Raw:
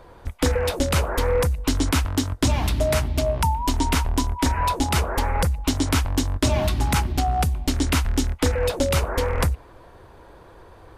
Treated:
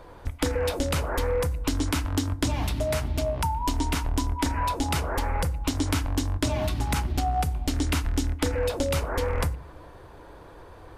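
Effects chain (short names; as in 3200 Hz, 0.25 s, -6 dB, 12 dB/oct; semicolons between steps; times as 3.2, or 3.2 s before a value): compressor, threshold -23 dBFS, peak gain reduction 7.5 dB; FDN reverb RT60 0.64 s, low-frequency decay 1.4×, high-frequency decay 0.45×, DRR 13 dB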